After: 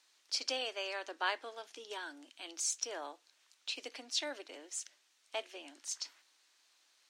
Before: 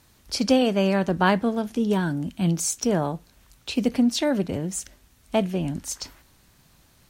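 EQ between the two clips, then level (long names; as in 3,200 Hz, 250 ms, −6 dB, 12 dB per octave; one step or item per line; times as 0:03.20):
elliptic high-pass filter 290 Hz, stop band 40 dB
high-frequency loss of the air 130 metres
first difference
+4.0 dB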